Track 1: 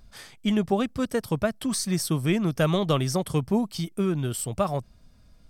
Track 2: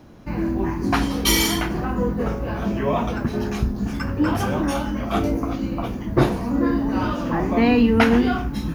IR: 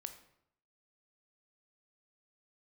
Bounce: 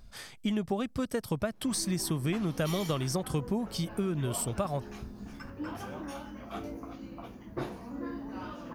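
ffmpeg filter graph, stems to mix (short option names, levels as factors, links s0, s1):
-filter_complex "[0:a]volume=0.944[s0];[1:a]lowshelf=f=180:g=-7,adelay=1400,volume=0.158[s1];[s0][s1]amix=inputs=2:normalize=0,acompressor=threshold=0.0398:ratio=4"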